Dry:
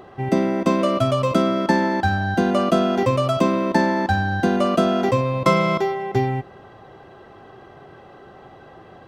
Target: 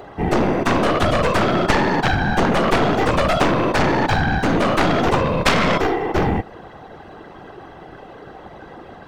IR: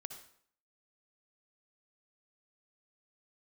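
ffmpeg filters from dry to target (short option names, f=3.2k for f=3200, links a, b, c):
-af "afftfilt=real='hypot(re,im)*cos(2*PI*random(0))':imag='hypot(re,im)*sin(2*PI*random(1))':win_size=512:overlap=0.75,aeval=exprs='0.422*(cos(1*acos(clip(val(0)/0.422,-1,1)))-cos(1*PI/2))+0.0841*(cos(3*acos(clip(val(0)/0.422,-1,1)))-cos(3*PI/2))+0.15*(cos(7*acos(clip(val(0)/0.422,-1,1)))-cos(7*PI/2))+0.0531*(cos(8*acos(clip(val(0)/0.422,-1,1)))-cos(8*PI/2))':c=same,volume=5dB"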